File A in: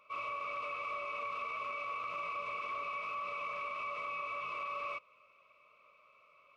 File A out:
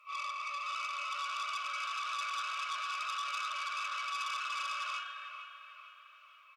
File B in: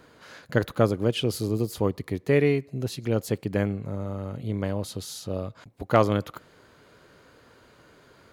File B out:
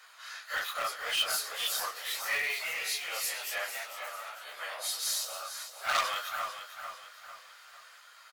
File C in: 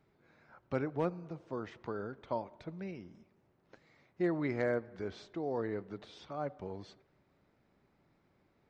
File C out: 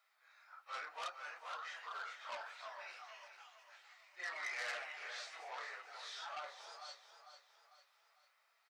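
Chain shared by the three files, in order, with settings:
phase scrambler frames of 0.1 s; HPF 970 Hz 24 dB/oct; high shelf 3500 Hz +5 dB; comb 1.6 ms, depth 36%; in parallel at -11.5 dB: wrapped overs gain 26 dB; on the sum: echoes that change speed 0.586 s, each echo +2 st, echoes 3, each echo -6 dB; on a send: feedback echo 0.449 s, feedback 42%, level -10.5 dB; on the sum: core saturation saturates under 4000 Hz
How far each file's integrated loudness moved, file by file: +2.5, -6.0, -7.5 LU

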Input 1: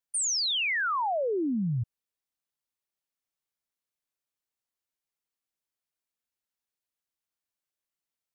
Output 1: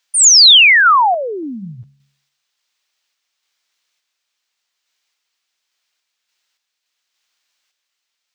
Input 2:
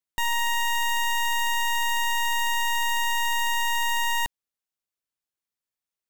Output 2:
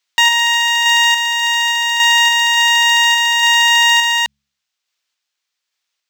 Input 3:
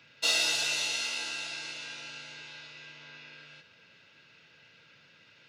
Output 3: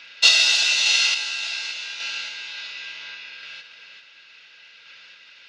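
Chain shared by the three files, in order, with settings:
differentiator; de-hum 70.01 Hz, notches 3; in parallel at -0.5 dB: limiter -25.5 dBFS; on the sum: random-step tremolo; air absorption 180 m; normalise peaks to -2 dBFS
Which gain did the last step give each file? +31.0, +27.5, +21.5 dB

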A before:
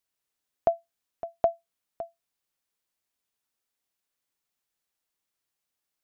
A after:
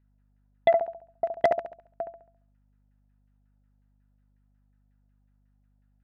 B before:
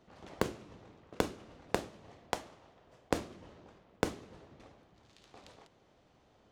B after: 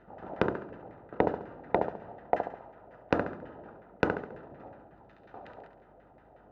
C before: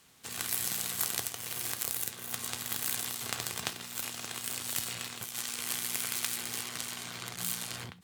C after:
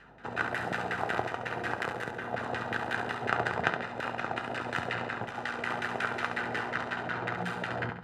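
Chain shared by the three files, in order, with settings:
LFO low-pass saw down 5.5 Hz 580–1900 Hz; on a send: flutter echo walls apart 11.8 m, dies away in 0.52 s; on the sum: added harmonics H 5 -13 dB, 6 -36 dB, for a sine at -5.5 dBFS; notch comb 1100 Hz; hum 50 Hz, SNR 33 dB; normalise peaks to -9 dBFS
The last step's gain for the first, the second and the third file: -4.5, -0.5, +3.5 dB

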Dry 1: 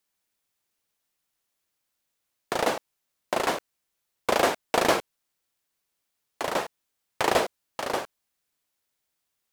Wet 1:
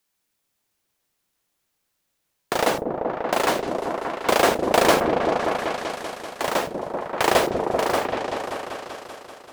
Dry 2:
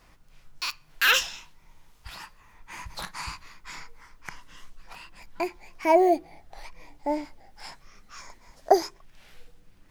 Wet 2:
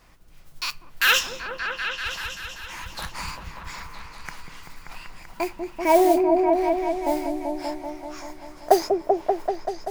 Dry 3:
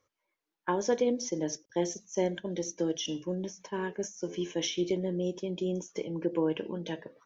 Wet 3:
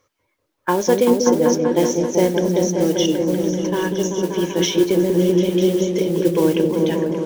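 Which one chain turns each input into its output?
modulation noise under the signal 19 dB; on a send: repeats that get brighter 0.193 s, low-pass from 400 Hz, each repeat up 1 oct, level 0 dB; on the sum: normalise peaks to -2 dBFS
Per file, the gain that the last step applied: +4.0, +2.0, +11.0 dB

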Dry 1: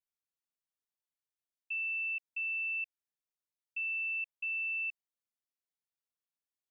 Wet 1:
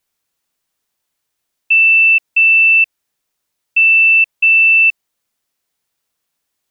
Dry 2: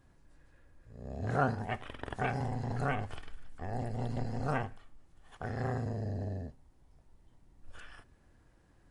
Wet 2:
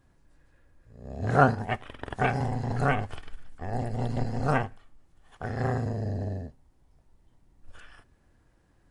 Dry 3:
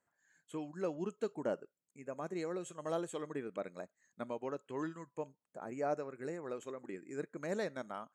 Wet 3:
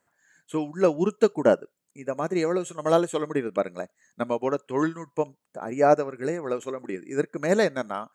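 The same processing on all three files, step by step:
upward expander 1.5:1, over -46 dBFS; normalise peaks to -6 dBFS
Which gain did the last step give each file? +26.0, +10.5, +18.0 dB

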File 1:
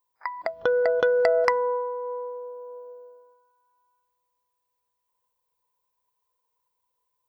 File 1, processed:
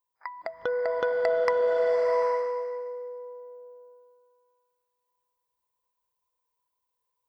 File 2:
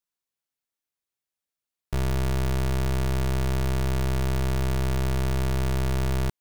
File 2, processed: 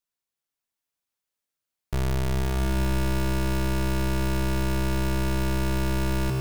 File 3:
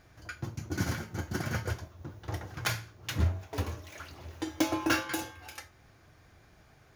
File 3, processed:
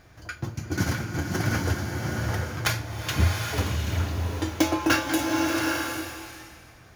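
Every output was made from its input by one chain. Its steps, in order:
bloom reverb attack 0.79 s, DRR 1 dB; match loudness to -27 LUFS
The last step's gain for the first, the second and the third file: -6.0, 0.0, +5.5 dB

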